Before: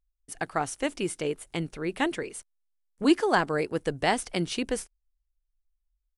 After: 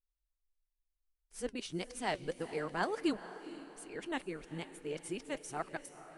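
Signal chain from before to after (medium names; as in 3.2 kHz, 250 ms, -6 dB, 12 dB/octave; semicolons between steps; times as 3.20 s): reverse the whole clip; flange 1.6 Hz, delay 1.2 ms, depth 4.4 ms, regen +73%; echo that smears into a reverb 458 ms, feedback 44%, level -13.5 dB; trim -6.5 dB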